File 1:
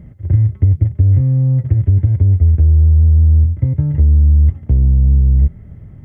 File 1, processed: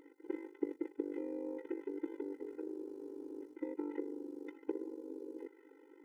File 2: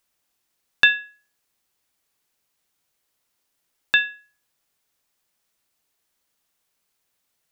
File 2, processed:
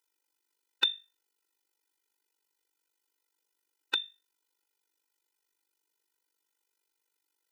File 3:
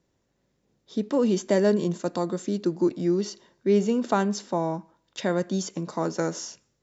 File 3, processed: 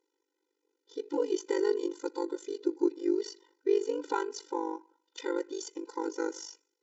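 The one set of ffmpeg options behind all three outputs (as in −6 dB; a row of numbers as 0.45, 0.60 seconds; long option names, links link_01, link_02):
-af "tremolo=f=49:d=0.947,afftfilt=real='re*eq(mod(floor(b*sr/1024/260),2),1)':imag='im*eq(mod(floor(b*sr/1024/260),2),1)':win_size=1024:overlap=0.75"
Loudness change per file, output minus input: −31.0, −11.0, −7.0 LU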